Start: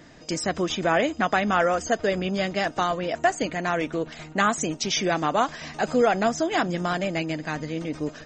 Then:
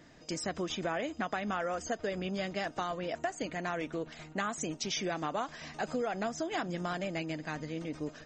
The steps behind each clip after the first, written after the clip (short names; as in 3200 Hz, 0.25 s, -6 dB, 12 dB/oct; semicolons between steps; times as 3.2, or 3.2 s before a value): compressor, threshold -22 dBFS, peak gain reduction 7 dB; gain -8 dB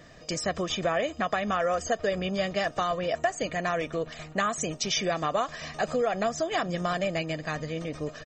comb 1.7 ms, depth 47%; gain +6 dB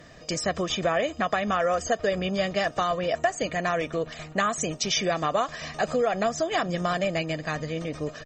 added harmonics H 3 -39 dB, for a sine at -12 dBFS; gain +2.5 dB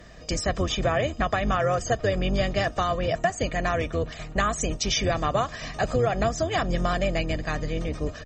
octaver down 2 oct, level +4 dB